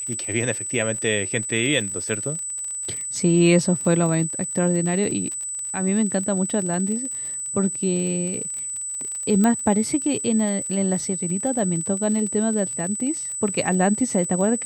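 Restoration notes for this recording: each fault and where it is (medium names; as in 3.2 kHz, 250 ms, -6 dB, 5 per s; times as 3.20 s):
crackle 43 per s -29 dBFS
whine 8 kHz -27 dBFS
9.44 s: pop -9 dBFS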